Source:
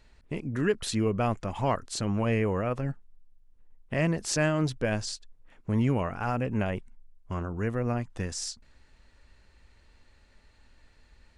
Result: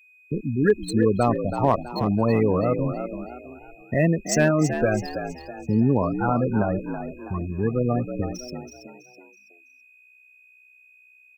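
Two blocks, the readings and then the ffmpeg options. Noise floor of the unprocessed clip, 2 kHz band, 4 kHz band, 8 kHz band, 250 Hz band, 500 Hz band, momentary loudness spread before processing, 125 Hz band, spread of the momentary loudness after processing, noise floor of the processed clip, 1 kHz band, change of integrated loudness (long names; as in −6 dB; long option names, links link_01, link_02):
−60 dBFS, +4.0 dB, −2.0 dB, +1.5 dB, +7.5 dB, +7.5 dB, 11 LU, +5.0 dB, 14 LU, −55 dBFS, +6.5 dB, +6.0 dB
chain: -filter_complex "[0:a]afftfilt=real='re*gte(hypot(re,im),0.0708)':imag='im*gte(hypot(re,im),0.0708)':win_size=1024:overlap=0.75,adynamicequalizer=threshold=0.00562:dfrequency=150:dqfactor=4.8:tfrequency=150:tqfactor=4.8:attack=5:release=100:ratio=0.375:range=2.5:mode=cutabove:tftype=bell,aeval=exprs='val(0)+0.00112*sin(2*PI*2500*n/s)':channel_layout=same,acrossover=split=130|3000[link_01][link_02][link_03];[link_01]acompressor=threshold=-39dB:ratio=10[link_04];[link_04][link_02][link_03]amix=inputs=3:normalize=0,highshelf=frequency=6700:width_type=q:width=1.5:gain=9,acrossover=split=3100[link_05][link_06];[link_06]acrusher=bits=3:mode=log:mix=0:aa=0.000001[link_07];[link_05][link_07]amix=inputs=2:normalize=0,volume=16.5dB,asoftclip=hard,volume=-16.5dB,asplit=2[link_08][link_09];[link_09]asplit=4[link_10][link_11][link_12][link_13];[link_10]adelay=327,afreqshift=62,volume=-9dB[link_14];[link_11]adelay=654,afreqshift=124,volume=-17.2dB[link_15];[link_12]adelay=981,afreqshift=186,volume=-25.4dB[link_16];[link_13]adelay=1308,afreqshift=248,volume=-33.5dB[link_17];[link_14][link_15][link_16][link_17]amix=inputs=4:normalize=0[link_18];[link_08][link_18]amix=inputs=2:normalize=0,volume=7.5dB"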